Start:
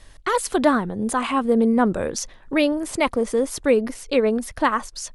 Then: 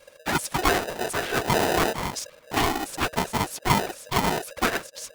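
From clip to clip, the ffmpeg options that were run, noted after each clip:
-af "afftfilt=real='hypot(re,im)*cos(2*PI*random(0))':imag='hypot(re,im)*sin(2*PI*random(1))':win_size=512:overlap=0.75,afreqshift=-90,aeval=exprs='val(0)*sgn(sin(2*PI*550*n/s))':c=same,volume=1.19"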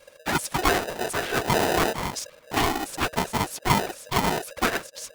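-af anull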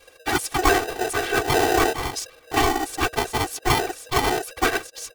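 -af "aecho=1:1:2.6:0.95"

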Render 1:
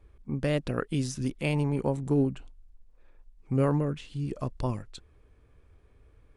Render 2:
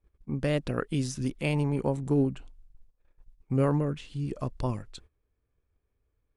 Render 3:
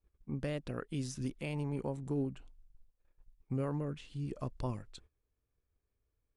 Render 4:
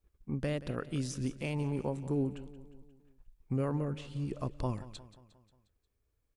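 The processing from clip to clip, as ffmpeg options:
-af "agate=range=0.126:threshold=0.00282:ratio=16:detection=peak"
-af "alimiter=limit=0.106:level=0:latency=1:release=372,volume=0.473"
-af "aecho=1:1:178|356|534|712|890:0.158|0.0856|0.0462|0.025|0.0135,volume=1.41"

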